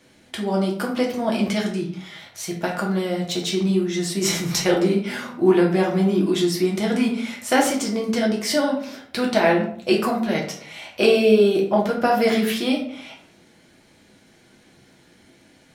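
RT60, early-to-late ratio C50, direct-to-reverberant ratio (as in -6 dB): 0.55 s, 6.5 dB, -2.0 dB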